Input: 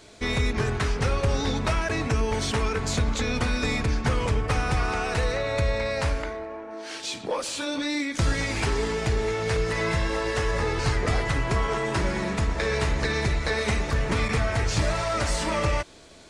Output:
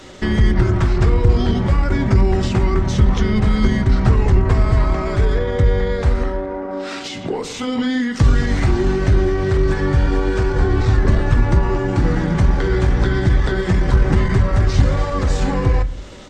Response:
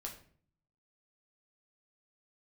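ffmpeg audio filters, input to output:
-filter_complex "[0:a]acrossover=split=360[a][b];[b]acompressor=threshold=-36dB:ratio=8[c];[a][c]amix=inputs=2:normalize=0,asetrate=38170,aresample=44100,atempo=1.15535,asplit=2[d][e];[1:a]atrim=start_sample=2205,lowpass=2.8k[f];[e][f]afir=irnorm=-1:irlink=0,volume=-2dB[g];[d][g]amix=inputs=2:normalize=0,volume=8.5dB"

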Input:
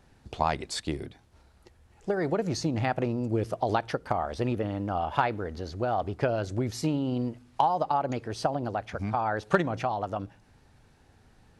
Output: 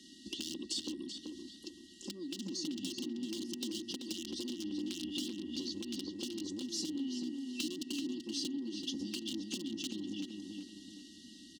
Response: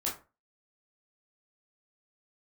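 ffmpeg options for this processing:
-filter_complex "[0:a]aeval=exprs='(mod(9.44*val(0)+1,2)-1)/9.44':c=same,afftfilt=real='re*(1-between(b*sr/4096,390,2700))':imag='im*(1-between(b*sr/4096,390,2700))':win_size=4096:overlap=0.75,acrossover=split=450|1200[a][b][c];[a]acompressor=threshold=-38dB:ratio=4[d];[b]acompressor=threshold=-52dB:ratio=4[e];[c]acompressor=threshold=-49dB:ratio=4[f];[d][e][f]amix=inputs=3:normalize=0,acrossover=split=220 7500:gain=0.0794 1 0.141[g][h][i];[g][h][i]amix=inputs=3:normalize=0,acompressor=threshold=-49dB:ratio=10,asoftclip=type=tanh:threshold=-39.5dB,highpass=f=170:p=1,highshelf=f=3.5k:g=7,aecho=1:1:3.8:0.86,asplit=2[j][k];[k]adelay=384,lowpass=f=3.1k:p=1,volume=-4dB,asplit=2[l][m];[m]adelay=384,lowpass=f=3.1k:p=1,volume=0.43,asplit=2[n][o];[o]adelay=384,lowpass=f=3.1k:p=1,volume=0.43,asplit=2[p][q];[q]adelay=384,lowpass=f=3.1k:p=1,volume=0.43,asplit=2[r][s];[s]adelay=384,lowpass=f=3.1k:p=1,volume=0.43[t];[l][n][p][r][t]amix=inputs=5:normalize=0[u];[j][u]amix=inputs=2:normalize=0,aeval=exprs='val(0)+0.000112*sin(2*PI*1900*n/s)':c=same,volume=10dB"

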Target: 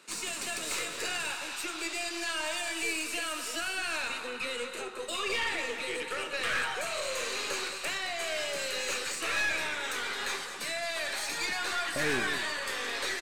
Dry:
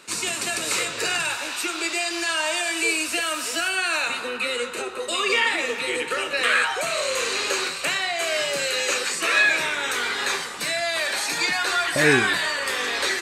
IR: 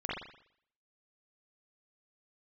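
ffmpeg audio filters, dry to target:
-af "highpass=130,aeval=exprs='(tanh(7.94*val(0)+0.45)-tanh(0.45))/7.94':c=same,aecho=1:1:217:0.282,volume=-7dB"

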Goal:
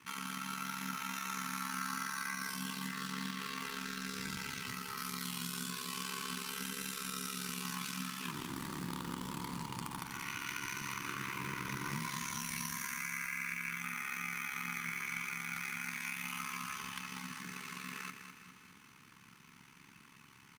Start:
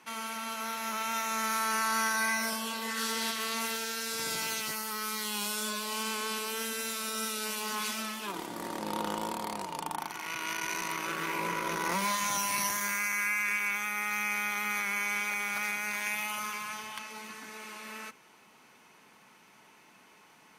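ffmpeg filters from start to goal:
-filter_complex "[0:a]flanger=delay=6.2:depth=4.3:regen=-41:speed=0.84:shape=sinusoidal,aeval=exprs='val(0)*sin(2*PI*34*n/s)':c=same,asettb=1/sr,asplit=3[a][b][c];[a]atrim=end=2.884[d];[b]atrim=start=2.88:end=4.98,asetpts=PTS-STARTPTS,afade=t=in:d=0.004:c=qsin,afade=t=out:st=2.096:d=0.004:c=qsin,highshelf=f=4.4k:g=-10[e];[c]atrim=start=4.976[f];[d][e]acrossfade=d=0.004:c1=hsin:c2=qsin[g];[g][f]acrossfade=d=0.004:c1=qsin:c2=hsin,tremolo=f=43:d=0.462,firequalizer=gain_entry='entry(160,0);entry(610,-26);entry(1100,-8)':delay=0.05:min_phase=1,acompressor=threshold=-53dB:ratio=4,acrusher=bits=4:mode=log:mix=0:aa=0.000001,aecho=1:1:204|408|612|816|1020|1224:0.376|0.192|0.0978|0.0499|0.0254|0.013,volume=15dB"

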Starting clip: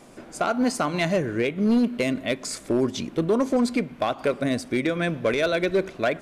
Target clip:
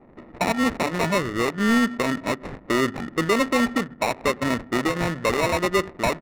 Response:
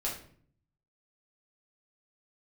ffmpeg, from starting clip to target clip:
-af "bandreject=f=50:t=h:w=6,bandreject=f=100:t=h:w=6,bandreject=f=150:t=h:w=6,aresample=16000,acrusher=samples=10:mix=1:aa=0.000001,aresample=44100,adynamicsmooth=sensitivity=4.5:basefreq=590,equalizer=f=1.7k:w=2.8:g=11"

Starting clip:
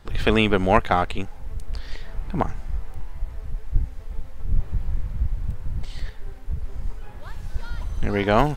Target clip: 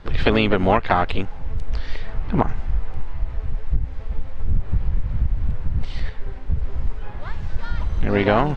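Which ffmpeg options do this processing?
-filter_complex "[0:a]asplit=2[a][b];[b]asetrate=55563,aresample=44100,atempo=0.793701,volume=-9dB[c];[a][c]amix=inputs=2:normalize=0,acompressor=threshold=-18dB:ratio=10,lowpass=3.8k,volume=6dB"

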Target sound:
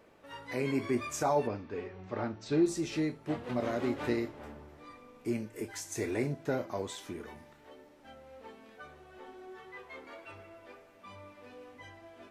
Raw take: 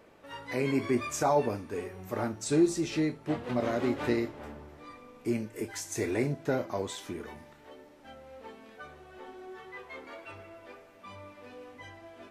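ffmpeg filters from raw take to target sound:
-filter_complex "[0:a]asettb=1/sr,asplit=3[a][b][c];[a]atrim=end=1.474[d];[b]atrim=start=1.47:end=2.66,asetpts=PTS-STARTPTS,afade=t=in:d=0.004:c=qsin,afade=t=out:st=1.186:d=0.004:c=qsin,lowpass=f=4.7k:w=0.5412,lowpass=f=4.7k:w=1.3066[e];[c]atrim=start=2.656[f];[d][e]acrossfade=d=0.004:c1=hsin:c2=qsin[g];[g][f]acrossfade=d=0.004:c1=qsin:c2=hsin,volume=-3dB"

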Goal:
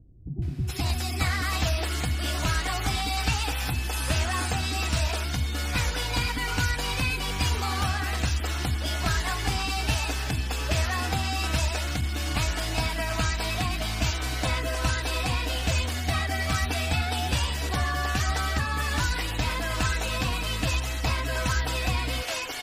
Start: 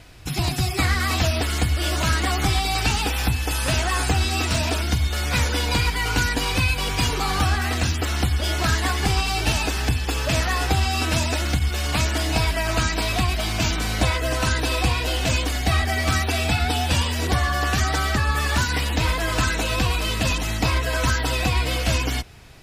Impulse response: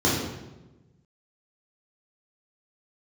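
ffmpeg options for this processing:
-filter_complex "[0:a]acrossover=split=360[a][b];[b]adelay=420[c];[a][c]amix=inputs=2:normalize=0,volume=-5dB"

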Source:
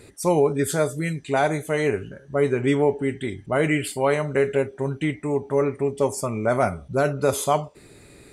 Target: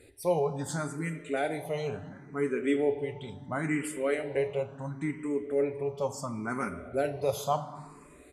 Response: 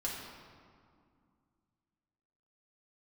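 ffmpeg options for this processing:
-filter_complex "[0:a]asplit=2[a][b];[1:a]atrim=start_sample=2205[c];[b][c]afir=irnorm=-1:irlink=0,volume=-8.5dB[d];[a][d]amix=inputs=2:normalize=0,aresample=32000,aresample=44100,asplit=2[e][f];[f]afreqshift=0.72[g];[e][g]amix=inputs=2:normalize=1,volume=-8.5dB"

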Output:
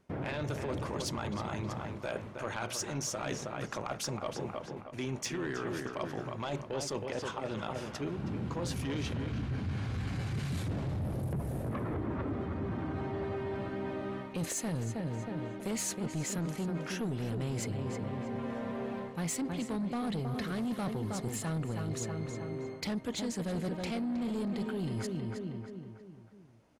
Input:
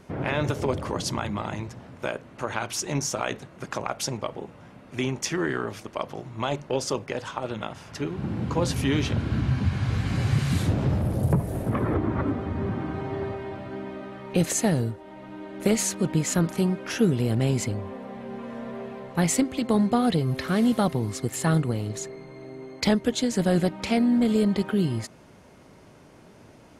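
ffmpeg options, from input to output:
-filter_complex "[0:a]agate=range=-17dB:threshold=-46dB:ratio=16:detection=peak,asplit=2[a][b];[b]adelay=318,lowpass=f=3.1k:p=1,volume=-8.5dB,asplit=2[c][d];[d]adelay=318,lowpass=f=3.1k:p=1,volume=0.48,asplit=2[e][f];[f]adelay=318,lowpass=f=3.1k:p=1,volume=0.48,asplit=2[g][h];[h]adelay=318,lowpass=f=3.1k:p=1,volume=0.48,asplit=2[i][j];[j]adelay=318,lowpass=f=3.1k:p=1,volume=0.48[k];[a][c][e][g][i][k]amix=inputs=6:normalize=0,asoftclip=type=tanh:threshold=-20dB,areverse,acompressor=threshold=-33dB:ratio=6,areverse"

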